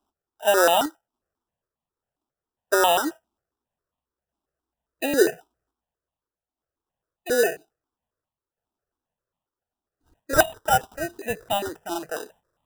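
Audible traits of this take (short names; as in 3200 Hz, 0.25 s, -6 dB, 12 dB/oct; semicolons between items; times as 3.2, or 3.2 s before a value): aliases and images of a low sample rate 2200 Hz, jitter 0%; random-step tremolo; notches that jump at a steady rate 7.4 Hz 510–1500 Hz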